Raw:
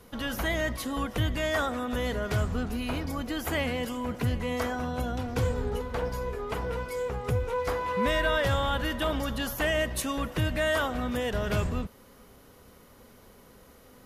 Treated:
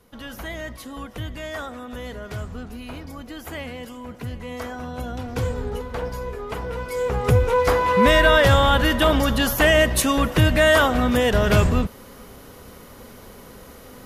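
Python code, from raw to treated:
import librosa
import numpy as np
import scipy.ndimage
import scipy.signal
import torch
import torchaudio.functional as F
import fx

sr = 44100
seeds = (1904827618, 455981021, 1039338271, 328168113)

y = fx.gain(x, sr, db=fx.line((4.27, -4.0), (5.38, 2.5), (6.73, 2.5), (7.23, 11.0)))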